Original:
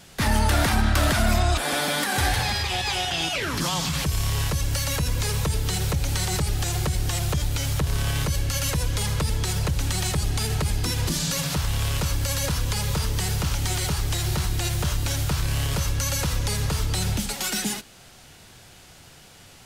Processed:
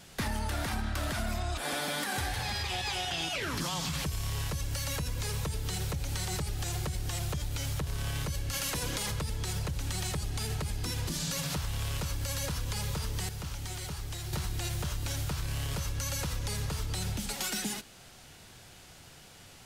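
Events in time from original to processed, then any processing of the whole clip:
0:08.52–0:09.10: ceiling on every frequency bin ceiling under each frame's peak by 15 dB
0:13.29–0:14.33: clip gain −9 dB
whole clip: downward compressor, threshold −26 dBFS; level −4 dB

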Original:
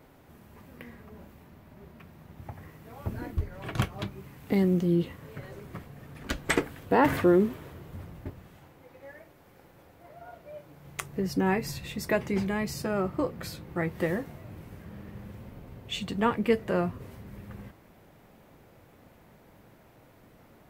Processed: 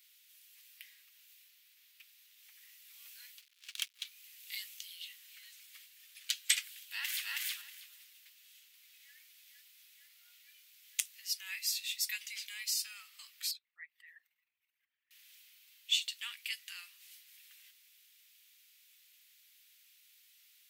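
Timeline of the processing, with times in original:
0:03.39–0:04.05: slack as between gear wheels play −33.5 dBFS
0:06.81–0:07.29: delay throw 320 ms, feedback 15%, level −0.5 dB
0:08.27–0:09.15: delay throw 460 ms, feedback 80%, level −4 dB
0:13.51–0:15.11: spectral envelope exaggerated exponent 2
whole clip: inverse Chebyshev high-pass filter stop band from 500 Hz, stop band 80 dB; level +6.5 dB

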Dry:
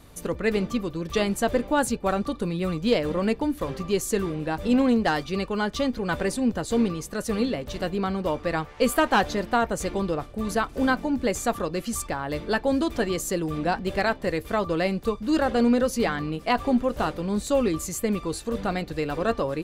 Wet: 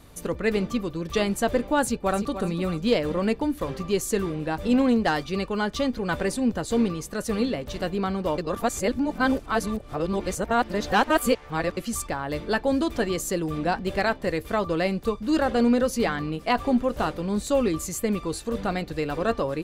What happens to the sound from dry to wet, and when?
0:01.83–0:02.37: delay throw 300 ms, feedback 30%, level −10 dB
0:08.38–0:11.77: reverse

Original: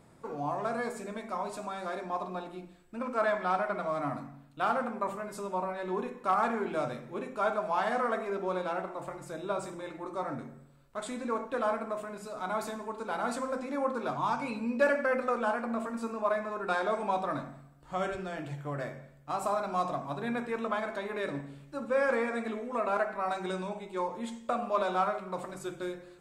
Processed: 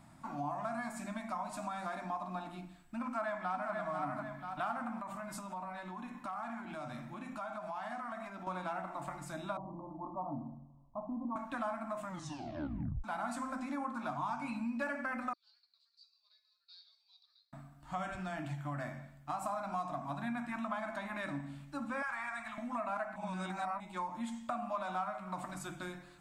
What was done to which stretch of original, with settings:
0:03.04–0:03.73: delay throw 490 ms, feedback 35%, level −5.5 dB
0:05.00–0:08.47: downward compressor, threshold −38 dBFS
0:09.57–0:11.36: Butterworth low-pass 1,100 Hz 96 dB per octave
0:12.01: tape stop 1.03 s
0:15.33–0:17.53: flat-topped band-pass 4,400 Hz, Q 6.3
0:22.02–0:22.58: Chebyshev band-stop filter 120–950 Hz
0:23.16–0:23.80: reverse
whole clip: Chebyshev band-stop filter 290–680 Hz, order 2; dynamic equaliser 4,000 Hz, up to −4 dB, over −53 dBFS, Q 1.2; downward compressor 3 to 1, threshold −38 dBFS; level +1.5 dB

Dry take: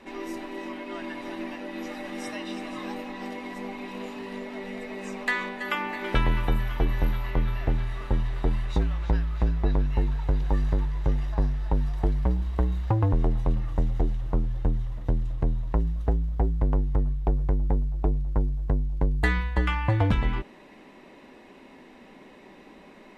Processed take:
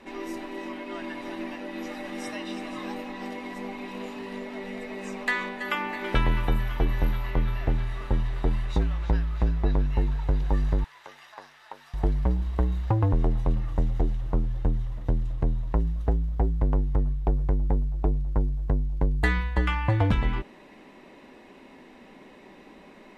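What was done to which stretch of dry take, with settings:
0:10.84–0:11.94: high-pass filter 1,100 Hz

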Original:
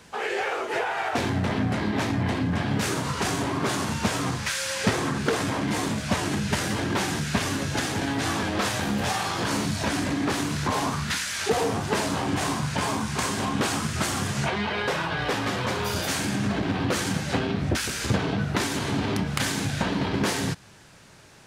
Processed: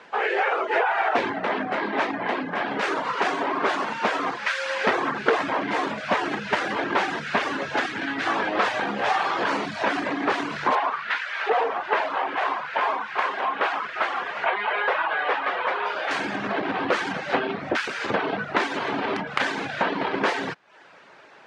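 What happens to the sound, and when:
0:01.32–0:04.90: high-pass filter 180 Hz
0:07.86–0:08.27: flat-topped bell 650 Hz −8.5 dB
0:10.75–0:16.11: three-way crossover with the lows and the highs turned down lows −18 dB, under 420 Hz, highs −15 dB, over 3,800 Hz
whole clip: high-pass filter 450 Hz 12 dB per octave; reverb reduction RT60 0.51 s; low-pass filter 2,300 Hz 12 dB per octave; level +7.5 dB

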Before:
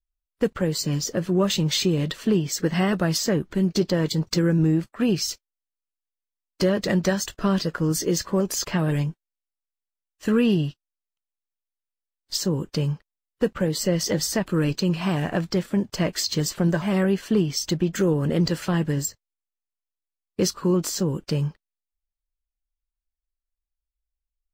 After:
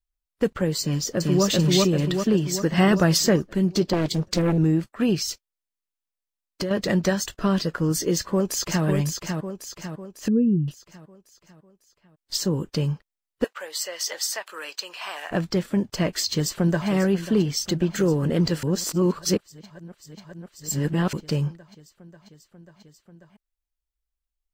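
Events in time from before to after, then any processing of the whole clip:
0:00.81–0:01.45: delay throw 390 ms, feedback 55%, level 0 dB
0:02.78–0:03.36: clip gain +4 dB
0:03.93–0:04.58: highs frequency-modulated by the lows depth 0.99 ms
0:05.22–0:06.71: downward compressor, threshold −23 dBFS
0:08.13–0:08.85: delay throw 550 ms, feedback 50%, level −5 dB
0:10.28–0:10.68: expanding power law on the bin magnitudes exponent 2.4
0:13.44–0:15.31: Bessel high-pass filter 950 Hz, order 4
0:16.28–0:16.88: delay throw 540 ms, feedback 85%, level −13.5 dB
0:18.63–0:21.13: reverse

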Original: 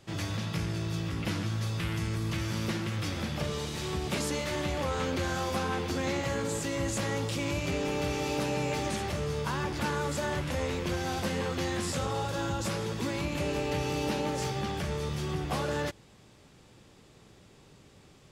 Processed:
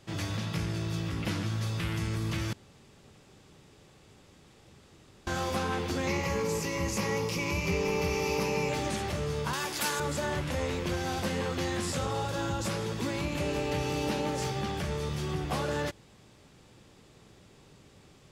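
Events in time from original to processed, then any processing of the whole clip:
0:02.53–0:05.27: fill with room tone
0:06.07–0:08.69: EQ curve with evenly spaced ripples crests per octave 0.82, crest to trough 10 dB
0:09.53–0:10.00: RIAA equalisation recording

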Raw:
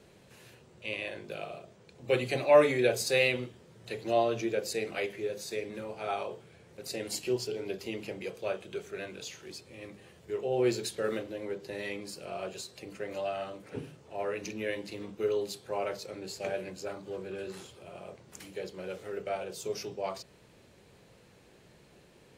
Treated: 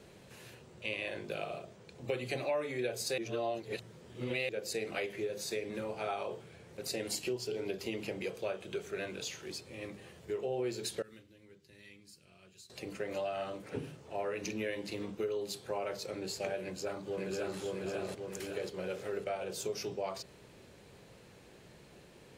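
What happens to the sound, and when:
0:03.18–0:04.49: reverse
0:11.02–0:12.70: guitar amp tone stack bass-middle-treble 6-0-2
0:16.62–0:17.59: delay throw 550 ms, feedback 50%, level −0.5 dB
whole clip: downward compressor 5 to 1, threshold −35 dBFS; level +2 dB

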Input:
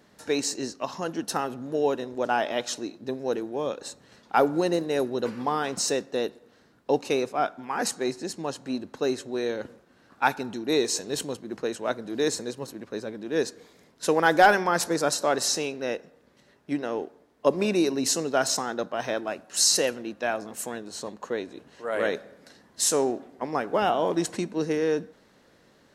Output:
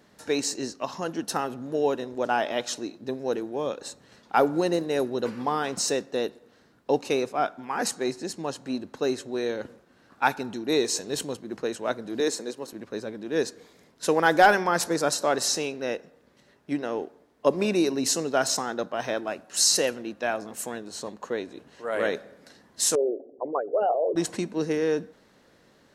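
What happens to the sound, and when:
0:12.20–0:12.73: Chebyshev high-pass filter 280 Hz
0:22.95–0:24.16: spectral envelope exaggerated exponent 3

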